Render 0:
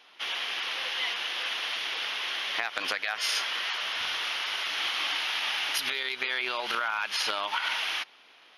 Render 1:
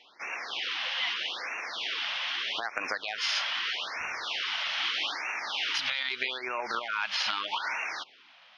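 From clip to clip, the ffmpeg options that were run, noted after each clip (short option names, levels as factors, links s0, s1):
-af "lowpass=f=5800:w=0.5412,lowpass=f=5800:w=1.3066,afftfilt=real='re*(1-between(b*sr/1024,340*pow(4000/340,0.5+0.5*sin(2*PI*0.8*pts/sr))/1.41,340*pow(4000/340,0.5+0.5*sin(2*PI*0.8*pts/sr))*1.41))':imag='im*(1-between(b*sr/1024,340*pow(4000/340,0.5+0.5*sin(2*PI*0.8*pts/sr))/1.41,340*pow(4000/340,0.5+0.5*sin(2*PI*0.8*pts/sr))*1.41))':win_size=1024:overlap=0.75"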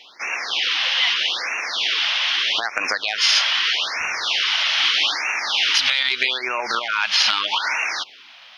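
-af "highshelf=f=2700:g=9.5,acontrast=28,volume=1.26"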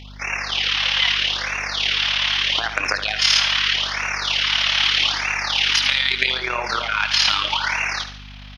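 -af "tremolo=f=36:d=0.667,aecho=1:1:72|144|216|288|360:0.299|0.128|0.0552|0.0237|0.0102,aeval=exprs='val(0)+0.00891*(sin(2*PI*50*n/s)+sin(2*PI*2*50*n/s)/2+sin(2*PI*3*50*n/s)/3+sin(2*PI*4*50*n/s)/4+sin(2*PI*5*50*n/s)/5)':c=same,volume=1.41"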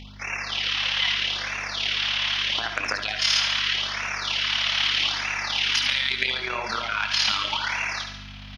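-af "equalizer=f=220:w=8:g=11,areverse,acompressor=mode=upward:threshold=0.0398:ratio=2.5,areverse,aecho=1:1:69|138|207|276|345|414|483:0.316|0.18|0.103|0.0586|0.0334|0.019|0.0108,volume=0.531"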